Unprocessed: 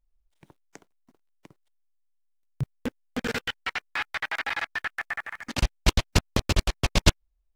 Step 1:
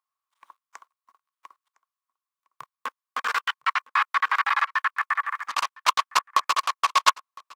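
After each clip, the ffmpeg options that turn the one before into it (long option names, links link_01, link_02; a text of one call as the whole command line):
ffmpeg -i in.wav -af "highpass=frequency=1100:width_type=q:width=11,aecho=1:1:1009:0.0668" out.wav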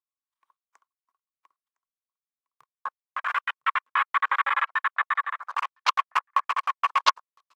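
ffmpeg -i in.wav -af "afwtdn=0.0316,aphaser=in_gain=1:out_gain=1:delay=3.1:decay=0.26:speed=1.4:type=sinusoidal,volume=-1.5dB" out.wav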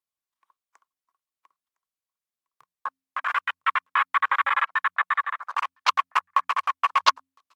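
ffmpeg -i in.wav -af "bandreject=frequency=88.72:width_type=h:width=4,bandreject=frequency=177.44:width_type=h:width=4,bandreject=frequency=266.16:width_type=h:width=4,volume=2dB" -ar 48000 -c:a libmp3lame -b:a 112k out.mp3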